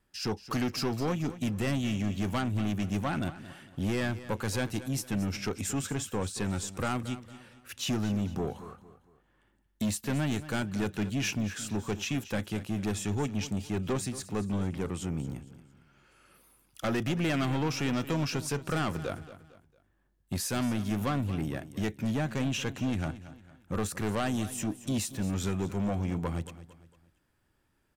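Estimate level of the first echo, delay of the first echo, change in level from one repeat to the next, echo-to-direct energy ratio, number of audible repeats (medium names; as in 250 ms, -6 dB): -15.0 dB, 227 ms, -8.5 dB, -14.5 dB, 3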